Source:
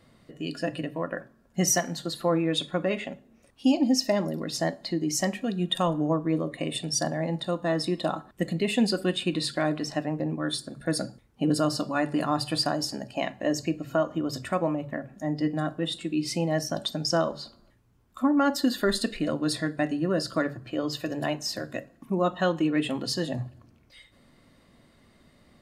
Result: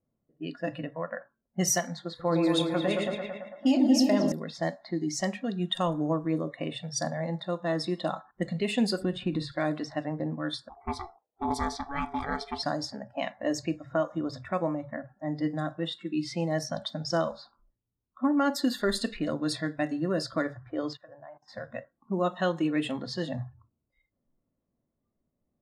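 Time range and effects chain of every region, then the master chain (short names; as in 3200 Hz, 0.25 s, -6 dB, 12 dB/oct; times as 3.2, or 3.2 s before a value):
2.08–4.32 doubler 30 ms -12 dB + repeats that get brighter 0.112 s, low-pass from 750 Hz, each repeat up 2 oct, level -3 dB
9.02–9.52 compressor 2:1, threshold -28 dBFS + tilt -2.5 dB/oct
10.69–12.63 ring modulator 560 Hz + Doppler distortion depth 0.12 ms
20.93–21.48 LPF 7500 Hz + level quantiser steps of 20 dB
whole clip: low-pass opened by the level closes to 720 Hz, open at -21 dBFS; spectral noise reduction 19 dB; gain -2.5 dB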